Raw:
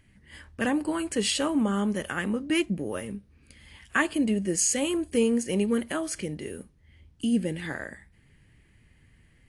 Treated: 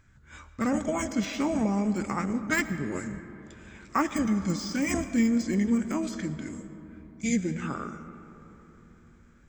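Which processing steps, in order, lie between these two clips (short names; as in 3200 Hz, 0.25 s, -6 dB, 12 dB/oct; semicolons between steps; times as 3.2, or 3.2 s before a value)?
de-esser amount 75%; formant shift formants -5 st; on a send: reverb RT60 3.8 s, pre-delay 70 ms, DRR 11.5 dB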